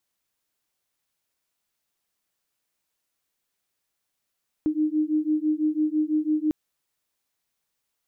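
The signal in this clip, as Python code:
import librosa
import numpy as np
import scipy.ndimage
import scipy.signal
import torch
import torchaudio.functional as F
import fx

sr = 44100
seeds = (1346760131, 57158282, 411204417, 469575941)

y = fx.two_tone_beats(sr, length_s=1.85, hz=304.0, beat_hz=6.0, level_db=-24.0)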